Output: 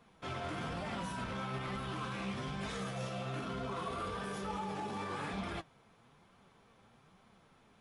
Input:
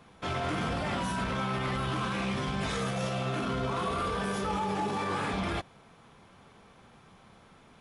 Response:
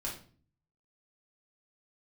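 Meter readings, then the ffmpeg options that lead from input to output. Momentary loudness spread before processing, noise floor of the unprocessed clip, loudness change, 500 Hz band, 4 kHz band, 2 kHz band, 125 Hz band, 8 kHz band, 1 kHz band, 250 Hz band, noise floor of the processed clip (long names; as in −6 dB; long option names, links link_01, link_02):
1 LU, −57 dBFS, −8.0 dB, −8.0 dB, −8.0 dB, −8.0 dB, −8.0 dB, −8.5 dB, −8.0 dB, −8.0 dB, −66 dBFS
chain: -af "flanger=delay=4:depth=6.1:regen=62:speed=1.1:shape=triangular,volume=-4dB"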